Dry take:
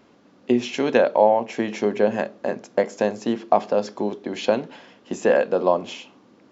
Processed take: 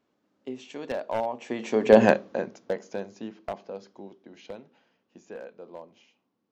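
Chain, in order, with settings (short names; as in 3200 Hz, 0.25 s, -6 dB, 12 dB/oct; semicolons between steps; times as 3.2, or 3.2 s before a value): one-sided fold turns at -10 dBFS; Doppler pass-by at 2.03, 18 m/s, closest 1.7 m; gain +7.5 dB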